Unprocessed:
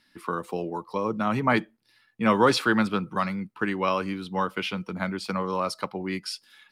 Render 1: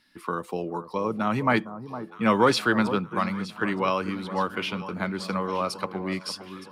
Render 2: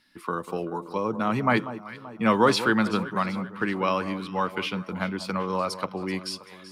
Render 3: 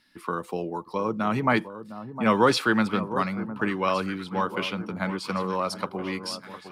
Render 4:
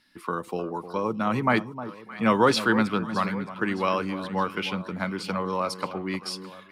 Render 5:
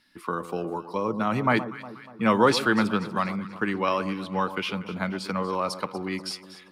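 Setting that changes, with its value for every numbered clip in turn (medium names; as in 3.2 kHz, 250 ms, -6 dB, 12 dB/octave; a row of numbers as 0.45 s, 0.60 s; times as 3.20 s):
echo whose repeats swap between lows and highs, time: 459 ms, 192 ms, 708 ms, 308 ms, 120 ms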